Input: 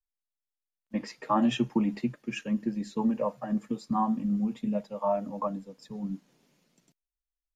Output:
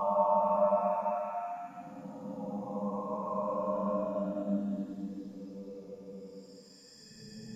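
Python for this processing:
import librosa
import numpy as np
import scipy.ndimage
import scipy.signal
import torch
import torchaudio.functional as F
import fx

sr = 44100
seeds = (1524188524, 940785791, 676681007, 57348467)

y = fx.spec_dropout(x, sr, seeds[0], share_pct=30)
y = fx.paulstretch(y, sr, seeds[1], factor=8.9, window_s=0.25, from_s=5.03)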